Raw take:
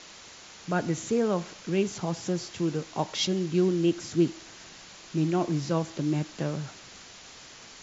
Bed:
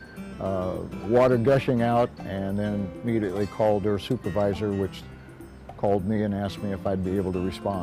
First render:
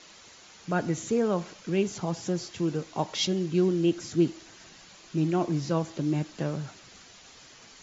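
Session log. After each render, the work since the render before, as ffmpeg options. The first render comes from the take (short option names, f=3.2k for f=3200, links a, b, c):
-af "afftdn=nr=6:nf=-48"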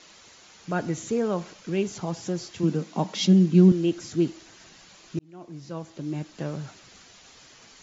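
-filter_complex "[0:a]asettb=1/sr,asplit=3[a][b][c];[a]atrim=end=2.634[d];[b]atrim=start=2.63:end=3.72,asetpts=PTS-STARTPTS,afade=t=in:d=0.004:c=qsin,afade=t=out:st=1.086:d=0.004:c=qsin,highpass=f=190:t=q:w=4.9[e];[c]atrim=start=3.716[f];[d][e]acrossfade=d=0.004:c1=hsin:c2=qsin[g];[g][f]acrossfade=d=0.004:c1=qsin:c2=hsin,asplit=2[h][i];[h]atrim=end=5.19,asetpts=PTS-STARTPTS,afade=t=out:st=5.186:d=0.004:c=hsin[j];[i]atrim=start=5.19,asetpts=PTS-STARTPTS,afade=t=in:d=1.48[k];[j][k]concat=n=2:v=0:a=1"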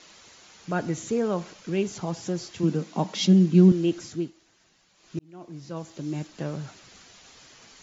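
-filter_complex "[0:a]asettb=1/sr,asplit=3[a][b][c];[a]atrim=end=5.764[d];[b]atrim=start=5.76:end=6.27,asetpts=PTS-STARTPTS,afade=t=in:d=0.004:c=qsin,afade=t=out:st=0.506:d=0.004:c=qsin,highshelf=f=6.8k:g=9.5[e];[c]atrim=start=6.266[f];[d][e]acrossfade=d=0.004:c1=hsin:c2=qsin[g];[g][f]acrossfade=d=0.004:c1=qsin:c2=hsin,asplit=3[h][i][j];[h]atrim=end=4.31,asetpts=PTS-STARTPTS,afade=t=out:st=4:d=0.31:silence=0.223872[k];[i]atrim=start=4.31:end=4.95,asetpts=PTS-STARTPTS,volume=-13dB[l];[j]atrim=start=4.95,asetpts=PTS-STARTPTS,afade=t=in:d=0.31:silence=0.223872[m];[k][l][m]concat=n=3:v=0:a=1"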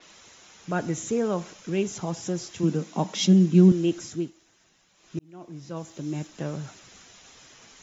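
-af "bandreject=f=4.5k:w=8.8,adynamicequalizer=threshold=0.00224:dfrequency=5900:dqfactor=0.7:tfrequency=5900:tqfactor=0.7:attack=5:release=100:ratio=0.375:range=3:mode=boostabove:tftype=highshelf"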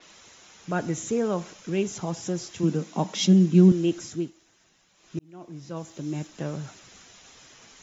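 -af anull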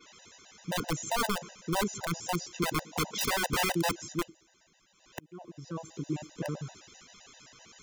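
-af "aeval=exprs='(mod(10*val(0)+1,2)-1)/10':c=same,afftfilt=real='re*gt(sin(2*PI*7.7*pts/sr)*(1-2*mod(floor(b*sr/1024/510),2)),0)':imag='im*gt(sin(2*PI*7.7*pts/sr)*(1-2*mod(floor(b*sr/1024/510),2)),0)':win_size=1024:overlap=0.75"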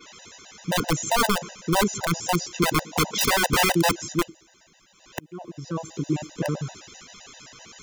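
-af "volume=8.5dB"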